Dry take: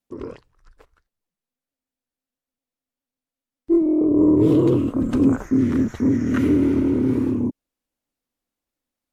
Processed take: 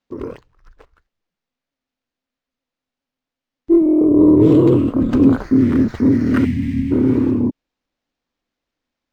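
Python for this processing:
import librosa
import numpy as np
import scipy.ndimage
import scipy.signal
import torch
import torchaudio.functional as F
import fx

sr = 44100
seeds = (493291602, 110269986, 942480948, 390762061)

y = fx.spec_box(x, sr, start_s=6.45, length_s=0.46, low_hz=270.0, high_hz=1600.0, gain_db=-28)
y = np.interp(np.arange(len(y)), np.arange(len(y))[::4], y[::4])
y = y * 10.0 ** (5.0 / 20.0)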